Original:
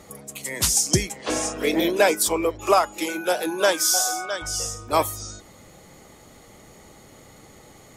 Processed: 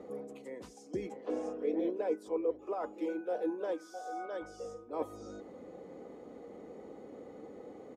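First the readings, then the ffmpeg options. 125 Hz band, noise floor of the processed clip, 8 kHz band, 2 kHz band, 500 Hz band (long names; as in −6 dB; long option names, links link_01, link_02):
−23.0 dB, −53 dBFS, −38.5 dB, −24.0 dB, −11.0 dB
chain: -af "aecho=1:1:4:0.41,areverse,acompressor=threshold=-34dB:ratio=5,areverse,bandpass=frequency=400:width_type=q:width=2.1:csg=0,volume=6dB"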